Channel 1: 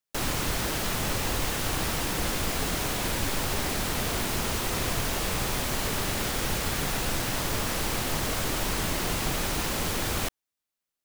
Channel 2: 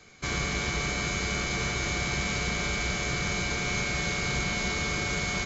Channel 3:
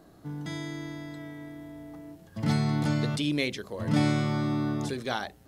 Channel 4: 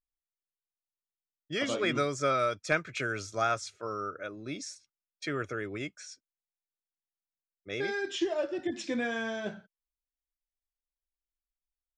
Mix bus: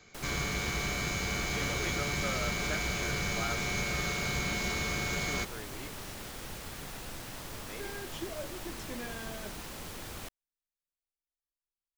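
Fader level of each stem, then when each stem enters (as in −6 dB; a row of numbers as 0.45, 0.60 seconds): −14.0 dB, −4.0 dB, muted, −10.5 dB; 0.00 s, 0.00 s, muted, 0.00 s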